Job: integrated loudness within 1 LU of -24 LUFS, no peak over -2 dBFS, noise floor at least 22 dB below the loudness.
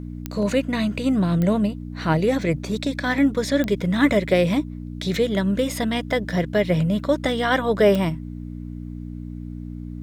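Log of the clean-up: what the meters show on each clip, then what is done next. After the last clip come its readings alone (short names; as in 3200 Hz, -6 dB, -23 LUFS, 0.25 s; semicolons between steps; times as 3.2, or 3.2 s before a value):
clicks 4; hum 60 Hz; harmonics up to 300 Hz; hum level -31 dBFS; loudness -21.5 LUFS; peak -5.0 dBFS; loudness target -24.0 LUFS
-> de-click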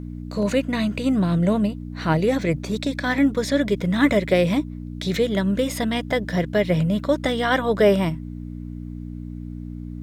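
clicks 0; hum 60 Hz; harmonics up to 300 Hz; hum level -31 dBFS
-> de-hum 60 Hz, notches 5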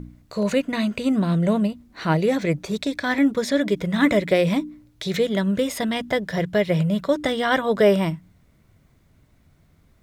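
hum none; loudness -22.0 LUFS; peak -5.5 dBFS; loudness target -24.0 LUFS
-> gain -2 dB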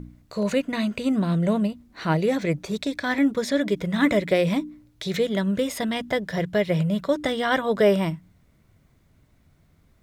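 loudness -24.0 LUFS; peak -7.5 dBFS; noise floor -61 dBFS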